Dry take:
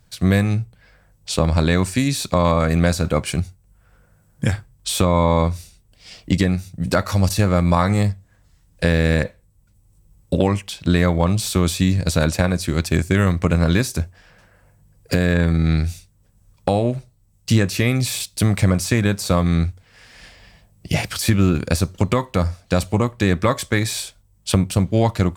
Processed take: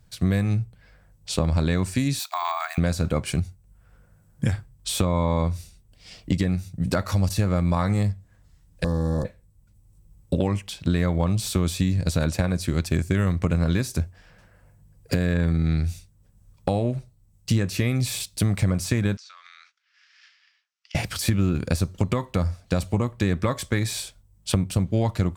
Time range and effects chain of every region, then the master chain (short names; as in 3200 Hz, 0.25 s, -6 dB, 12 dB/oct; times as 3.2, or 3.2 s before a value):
2.19–2.78 careless resampling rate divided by 2×, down none, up hold + brick-wall FIR high-pass 650 Hz
8.84–9.25 bell 1100 Hz +9.5 dB 1.5 oct + tube stage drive 15 dB, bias 0.45 + Butterworth band-stop 2400 Hz, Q 0.59
19.17–20.95 G.711 law mismatch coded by A + elliptic band-pass 1300–5900 Hz, stop band 80 dB + compressor 16:1, threshold -38 dBFS
whole clip: low shelf 270 Hz +5 dB; compressor 2.5:1, threshold -15 dBFS; gain -4.5 dB